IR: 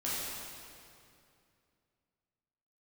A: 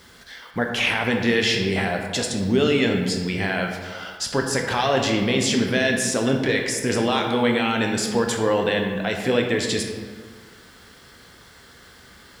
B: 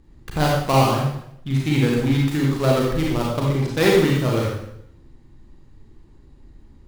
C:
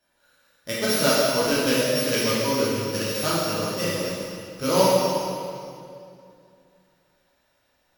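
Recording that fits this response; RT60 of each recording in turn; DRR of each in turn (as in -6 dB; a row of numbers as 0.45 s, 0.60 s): C; 1.7 s, 0.75 s, 2.5 s; 2.0 dB, -3.0 dB, -9.0 dB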